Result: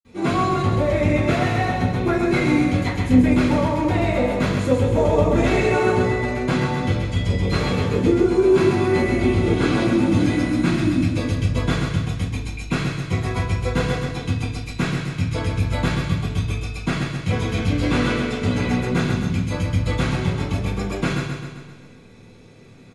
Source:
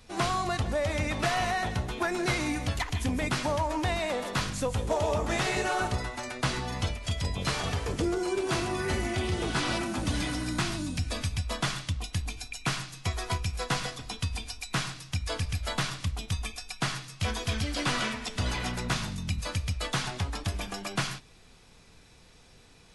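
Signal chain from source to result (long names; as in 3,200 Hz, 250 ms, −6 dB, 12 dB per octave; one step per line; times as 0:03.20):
high-shelf EQ 9,800 Hz +7 dB
repeating echo 131 ms, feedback 56%, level −5.5 dB
convolution reverb RT60 0.45 s, pre-delay 46 ms
level −2.5 dB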